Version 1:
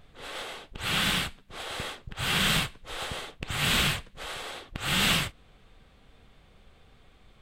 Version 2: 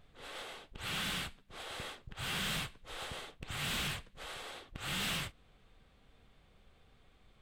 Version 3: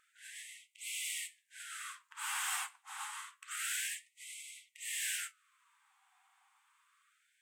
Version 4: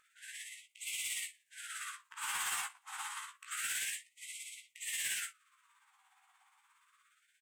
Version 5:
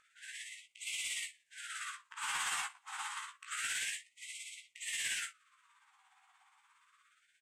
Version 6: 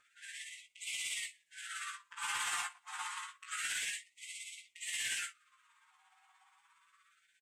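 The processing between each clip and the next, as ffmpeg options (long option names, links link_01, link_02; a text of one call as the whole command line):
ffmpeg -i in.wav -af "asoftclip=type=tanh:threshold=-24.5dB,volume=-7.5dB" out.wav
ffmpeg -i in.wav -af "equalizer=frequency=500:width_type=o:width=1:gain=-4,equalizer=frequency=1000:width_type=o:width=1:gain=5,equalizer=frequency=4000:width_type=o:width=1:gain=-11,equalizer=frequency=8000:width_type=o:width=1:gain=10,flanger=delay=5.1:depth=8.2:regen=65:speed=0.43:shape=triangular,afftfilt=real='re*gte(b*sr/1024,710*pow(2000/710,0.5+0.5*sin(2*PI*0.28*pts/sr)))':imag='im*gte(b*sr/1024,710*pow(2000/710,0.5+0.5*sin(2*PI*0.28*pts/sr)))':win_size=1024:overlap=0.75,volume=5dB" out.wav
ffmpeg -i in.wav -filter_complex "[0:a]tremolo=f=17:d=0.51,asoftclip=type=tanh:threshold=-34dB,asplit=2[link_01][link_02];[link_02]adelay=17,volume=-5dB[link_03];[link_01][link_03]amix=inputs=2:normalize=0,volume=3dB" out.wav
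ffmpeg -i in.wav -af "lowpass=8000,volume=1.5dB" out.wav
ffmpeg -i in.wav -filter_complex "[0:a]asplit=2[link_01][link_02];[link_02]adelay=5.2,afreqshift=0.37[link_03];[link_01][link_03]amix=inputs=2:normalize=1,volume=3dB" out.wav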